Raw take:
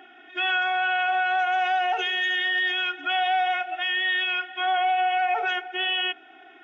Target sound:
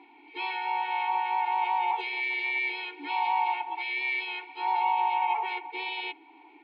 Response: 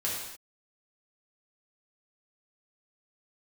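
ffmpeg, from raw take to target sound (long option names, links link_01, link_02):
-filter_complex "[0:a]asplit=4[link_01][link_02][link_03][link_04];[link_02]asetrate=52444,aresample=44100,atempo=0.840896,volume=-8dB[link_05];[link_03]asetrate=55563,aresample=44100,atempo=0.793701,volume=-1dB[link_06];[link_04]asetrate=66075,aresample=44100,atempo=0.66742,volume=-13dB[link_07];[link_01][link_05][link_06][link_07]amix=inputs=4:normalize=0,asplit=3[link_08][link_09][link_10];[link_08]bandpass=frequency=300:width_type=q:width=8,volume=0dB[link_11];[link_09]bandpass=frequency=870:width_type=q:width=8,volume=-6dB[link_12];[link_10]bandpass=frequency=2240:width_type=q:width=8,volume=-9dB[link_13];[link_11][link_12][link_13]amix=inputs=3:normalize=0,volume=5dB"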